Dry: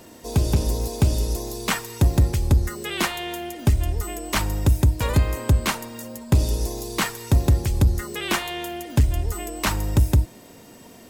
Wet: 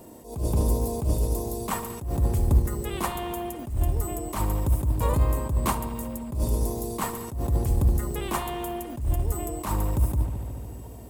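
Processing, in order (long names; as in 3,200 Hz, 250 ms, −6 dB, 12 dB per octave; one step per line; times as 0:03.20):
floating-point word with a short mantissa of 4 bits
flat-topped bell 2,900 Hz −10.5 dB 2.6 octaves
bucket-brigade delay 73 ms, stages 2,048, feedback 84%, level −16 dB
dynamic equaliser 1,100 Hz, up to +6 dB, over −46 dBFS, Q 3.3
level that may rise only so fast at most 110 dB per second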